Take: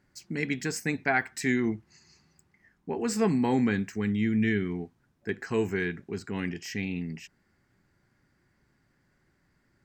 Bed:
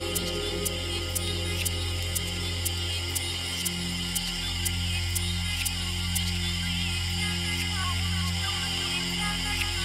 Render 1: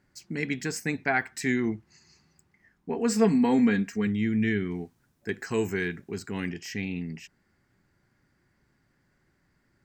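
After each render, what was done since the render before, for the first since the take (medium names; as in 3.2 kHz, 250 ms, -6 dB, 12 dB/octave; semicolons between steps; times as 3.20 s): 2.89–4.07 s: comb 4.3 ms, depth 68%; 4.70–6.50 s: treble shelf 4.8 kHz -> 8 kHz +11.5 dB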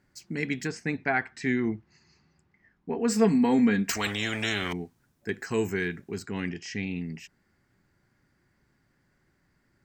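0.67–3.08 s: distance through air 120 m; 3.89–4.73 s: spectrum-flattening compressor 4:1; 6.25–6.87 s: low-pass 7.4 kHz 24 dB/octave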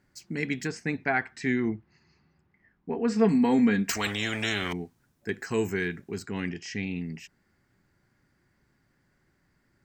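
1.70–3.29 s: distance through air 140 m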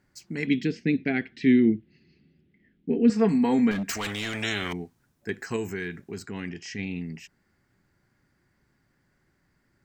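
0.47–3.10 s: FFT filter 100 Hz 0 dB, 260 Hz +10 dB, 500 Hz +2 dB, 1 kHz -19 dB, 2 kHz -1 dB, 3.3 kHz +8 dB, 9.5 kHz -21 dB, 15 kHz -12 dB; 3.71–4.34 s: overload inside the chain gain 26 dB; 5.56–6.79 s: compression 1.5:1, threshold -33 dBFS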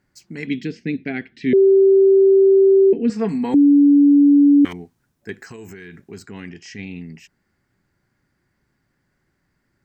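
1.53–2.93 s: bleep 388 Hz -8.5 dBFS; 3.54–4.65 s: bleep 286 Hz -8 dBFS; 5.34–6.07 s: compression, threshold -33 dBFS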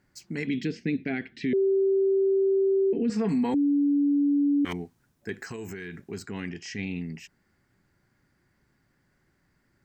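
peak limiter -19.5 dBFS, peak gain reduction 11.5 dB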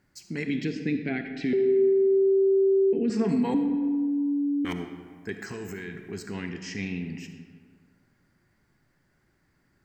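algorithmic reverb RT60 1.8 s, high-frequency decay 0.55×, pre-delay 15 ms, DRR 6.5 dB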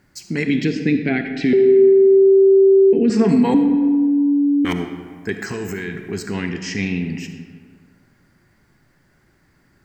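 trim +10 dB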